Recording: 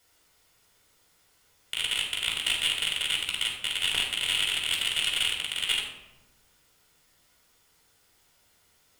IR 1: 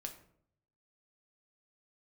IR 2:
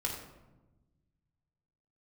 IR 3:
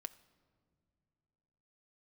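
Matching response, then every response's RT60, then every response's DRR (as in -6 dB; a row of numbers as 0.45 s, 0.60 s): 2; 0.65 s, 1.1 s, no single decay rate; 3.5 dB, -2.0 dB, 10.0 dB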